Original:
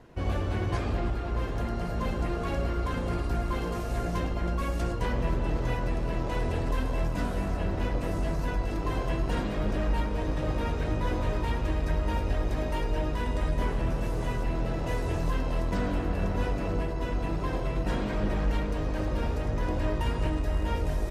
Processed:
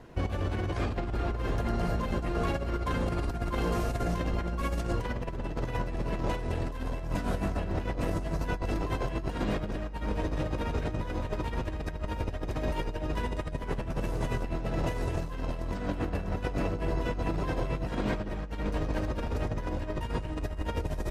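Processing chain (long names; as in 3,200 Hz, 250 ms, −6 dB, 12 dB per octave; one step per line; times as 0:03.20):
compressor whose output falls as the input rises −30 dBFS, ratio −0.5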